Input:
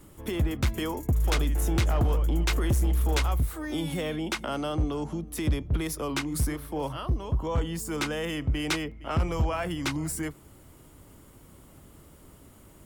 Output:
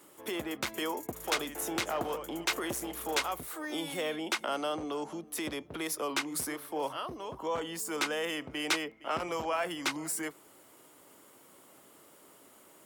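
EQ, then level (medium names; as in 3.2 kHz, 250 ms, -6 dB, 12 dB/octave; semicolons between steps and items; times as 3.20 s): high-pass 410 Hz 12 dB/octave; 0.0 dB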